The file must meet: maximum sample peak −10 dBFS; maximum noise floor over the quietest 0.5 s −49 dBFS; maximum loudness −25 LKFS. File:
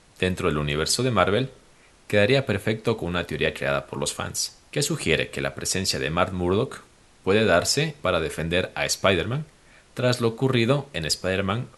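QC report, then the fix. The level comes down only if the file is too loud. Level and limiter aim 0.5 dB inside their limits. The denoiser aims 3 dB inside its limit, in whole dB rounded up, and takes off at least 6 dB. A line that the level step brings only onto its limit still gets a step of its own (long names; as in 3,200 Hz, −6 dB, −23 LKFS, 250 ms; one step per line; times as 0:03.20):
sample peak −2.5 dBFS: out of spec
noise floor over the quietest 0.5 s −54 dBFS: in spec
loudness −24.0 LKFS: out of spec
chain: level −1.5 dB
brickwall limiter −10.5 dBFS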